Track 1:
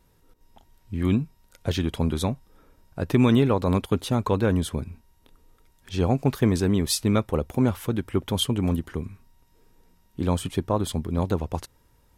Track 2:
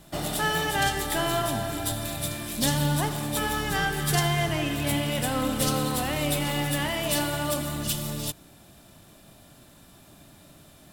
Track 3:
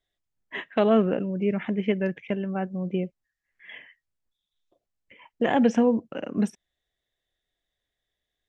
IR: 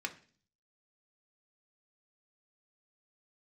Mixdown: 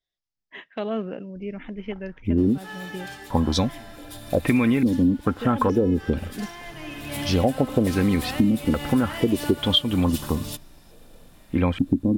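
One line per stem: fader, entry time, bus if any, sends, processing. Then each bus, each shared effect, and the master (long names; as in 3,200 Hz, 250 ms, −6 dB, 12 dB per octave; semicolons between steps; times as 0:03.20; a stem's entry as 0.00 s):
+3.0 dB, 1.35 s, muted 0:02.58–0:03.30, no send, low-shelf EQ 490 Hz +3.5 dB; comb filter 3.8 ms, depth 43%; low-pass on a step sequencer 2.3 Hz 270–5,200 Hz
−4.5 dB, 2.25 s, send −9.5 dB, hard clipping −20 dBFS, distortion −18 dB; automatic ducking −19 dB, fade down 0.40 s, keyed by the third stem
−8.0 dB, 0.00 s, no send, low-pass with resonance 5,200 Hz, resonance Q 3.2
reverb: on, RT60 0.45 s, pre-delay 3 ms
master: downward compressor 6 to 1, threshold −17 dBFS, peak gain reduction 12.5 dB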